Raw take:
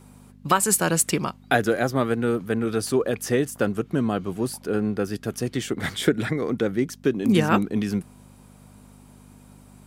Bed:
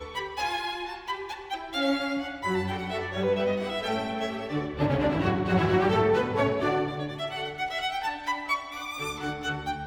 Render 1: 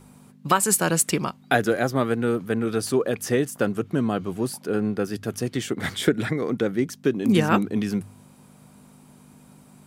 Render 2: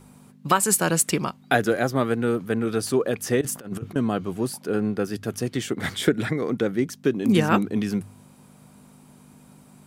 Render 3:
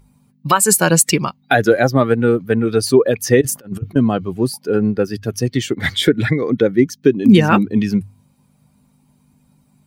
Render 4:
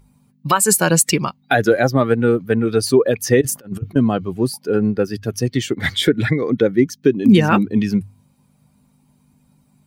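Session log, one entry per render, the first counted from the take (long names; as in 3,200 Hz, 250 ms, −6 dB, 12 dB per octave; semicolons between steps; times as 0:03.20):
hum removal 50 Hz, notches 2
0:03.41–0:03.96: compressor whose output falls as the input rises −30 dBFS, ratio −0.5
spectral dynamics exaggerated over time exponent 1.5; boost into a limiter +13 dB
level −1 dB; brickwall limiter −3 dBFS, peak gain reduction 1 dB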